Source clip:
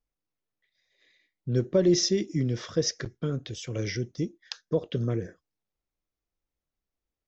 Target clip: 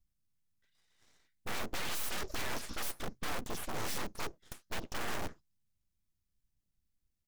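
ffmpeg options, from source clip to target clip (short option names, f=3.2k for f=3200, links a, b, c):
-filter_complex "[0:a]firequalizer=gain_entry='entry(180,0);entry(370,-19);entry(1800,-12);entry(7000,-5)':delay=0.05:min_phase=1,acrossover=split=450|3000[a][b][c];[b]acompressor=threshold=-37dB:ratio=10[d];[a][d][c]amix=inputs=3:normalize=0,aeval=exprs='(mod(75*val(0)+1,2)-1)/75':c=same,asplit=2[e][f];[f]asetrate=35002,aresample=44100,atempo=1.25992,volume=-5dB[g];[e][g]amix=inputs=2:normalize=0,aeval=exprs='abs(val(0))':c=same,volume=7.5dB"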